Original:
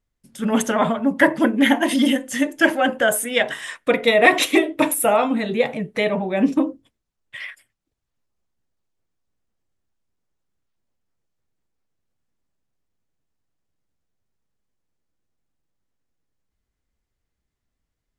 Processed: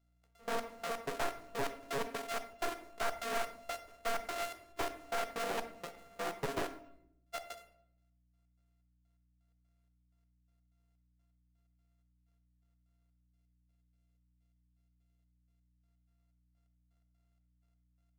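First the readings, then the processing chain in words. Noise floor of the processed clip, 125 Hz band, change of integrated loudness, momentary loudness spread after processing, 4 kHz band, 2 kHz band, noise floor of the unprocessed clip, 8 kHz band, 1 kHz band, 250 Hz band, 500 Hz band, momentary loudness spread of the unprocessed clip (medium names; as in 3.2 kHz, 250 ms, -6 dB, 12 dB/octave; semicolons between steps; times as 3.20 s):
-74 dBFS, -18.0 dB, -20.5 dB, 9 LU, -19.0 dB, -22.0 dB, -80 dBFS, -19.0 dB, -15.5 dB, -29.5 dB, -20.0 dB, 9 LU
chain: sorted samples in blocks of 64 samples; band-stop 830 Hz, Q 12; time-frequency box 13.29–15.67 s, 670–2000 Hz -6 dB; high-pass 450 Hz 12 dB/octave; compression 6:1, threshold -26 dBFS, peak gain reduction 18 dB; overload inside the chain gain 27 dB; trance gate "xx..x..x." 126 bpm -24 dB; hum 60 Hz, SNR 32 dB; simulated room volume 160 m³, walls mixed, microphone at 0.44 m; careless resampling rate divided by 2×, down none, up hold; loudspeaker Doppler distortion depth 0.59 ms; trim -2 dB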